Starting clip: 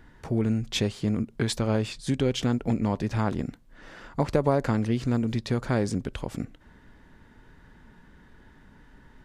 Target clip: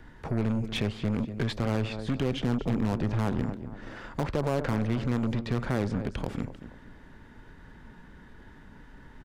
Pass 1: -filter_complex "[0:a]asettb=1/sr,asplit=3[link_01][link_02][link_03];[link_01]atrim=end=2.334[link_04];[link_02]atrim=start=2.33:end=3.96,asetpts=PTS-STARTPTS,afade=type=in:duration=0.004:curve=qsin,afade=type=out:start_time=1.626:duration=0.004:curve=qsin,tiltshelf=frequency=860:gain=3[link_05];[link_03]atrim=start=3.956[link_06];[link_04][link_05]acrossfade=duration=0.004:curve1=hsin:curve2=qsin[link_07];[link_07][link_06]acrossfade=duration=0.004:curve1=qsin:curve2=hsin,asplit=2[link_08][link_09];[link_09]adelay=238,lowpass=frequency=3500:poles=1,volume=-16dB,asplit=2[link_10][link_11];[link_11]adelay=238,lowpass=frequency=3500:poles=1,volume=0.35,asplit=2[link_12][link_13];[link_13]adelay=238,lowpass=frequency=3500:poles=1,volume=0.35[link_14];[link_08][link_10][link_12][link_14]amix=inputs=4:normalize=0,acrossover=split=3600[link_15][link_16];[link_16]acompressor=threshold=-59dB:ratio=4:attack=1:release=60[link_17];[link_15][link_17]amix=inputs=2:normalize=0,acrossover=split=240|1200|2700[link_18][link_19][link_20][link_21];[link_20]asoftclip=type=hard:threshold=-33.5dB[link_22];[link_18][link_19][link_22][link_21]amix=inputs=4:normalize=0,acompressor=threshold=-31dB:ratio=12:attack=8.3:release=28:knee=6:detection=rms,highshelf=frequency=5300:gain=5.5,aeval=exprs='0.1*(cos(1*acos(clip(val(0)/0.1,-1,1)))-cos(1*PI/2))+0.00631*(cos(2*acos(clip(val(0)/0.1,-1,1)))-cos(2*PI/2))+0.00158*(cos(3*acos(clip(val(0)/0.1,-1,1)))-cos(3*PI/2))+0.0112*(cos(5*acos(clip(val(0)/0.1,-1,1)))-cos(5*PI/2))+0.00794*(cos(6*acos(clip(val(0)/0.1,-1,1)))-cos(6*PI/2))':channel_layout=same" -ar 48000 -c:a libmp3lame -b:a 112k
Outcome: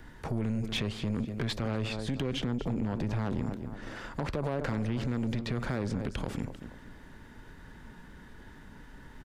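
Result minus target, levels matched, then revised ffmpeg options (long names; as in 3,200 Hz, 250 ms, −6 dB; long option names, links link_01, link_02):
downward compressor: peak gain reduction +7 dB; 8,000 Hz band +3.5 dB
-filter_complex "[0:a]asettb=1/sr,asplit=3[link_01][link_02][link_03];[link_01]atrim=end=2.334[link_04];[link_02]atrim=start=2.33:end=3.96,asetpts=PTS-STARTPTS,afade=type=in:duration=0.004:curve=qsin,afade=type=out:start_time=1.626:duration=0.004:curve=qsin,tiltshelf=frequency=860:gain=3[link_05];[link_03]atrim=start=3.956[link_06];[link_04][link_05]acrossfade=duration=0.004:curve1=hsin:curve2=qsin[link_07];[link_07][link_06]acrossfade=duration=0.004:curve1=qsin:curve2=hsin,asplit=2[link_08][link_09];[link_09]adelay=238,lowpass=frequency=3500:poles=1,volume=-16dB,asplit=2[link_10][link_11];[link_11]adelay=238,lowpass=frequency=3500:poles=1,volume=0.35,asplit=2[link_12][link_13];[link_13]adelay=238,lowpass=frequency=3500:poles=1,volume=0.35[link_14];[link_08][link_10][link_12][link_14]amix=inputs=4:normalize=0,acrossover=split=3600[link_15][link_16];[link_16]acompressor=threshold=-59dB:ratio=4:attack=1:release=60[link_17];[link_15][link_17]amix=inputs=2:normalize=0,acrossover=split=240|1200|2700[link_18][link_19][link_20][link_21];[link_20]asoftclip=type=hard:threshold=-33.5dB[link_22];[link_18][link_19][link_22][link_21]amix=inputs=4:normalize=0,acompressor=threshold=-23.5dB:ratio=12:attack=8.3:release=28:knee=6:detection=rms,highshelf=frequency=5300:gain=-4,aeval=exprs='0.1*(cos(1*acos(clip(val(0)/0.1,-1,1)))-cos(1*PI/2))+0.00631*(cos(2*acos(clip(val(0)/0.1,-1,1)))-cos(2*PI/2))+0.00158*(cos(3*acos(clip(val(0)/0.1,-1,1)))-cos(3*PI/2))+0.0112*(cos(5*acos(clip(val(0)/0.1,-1,1)))-cos(5*PI/2))+0.00794*(cos(6*acos(clip(val(0)/0.1,-1,1)))-cos(6*PI/2))':channel_layout=same" -ar 48000 -c:a libmp3lame -b:a 112k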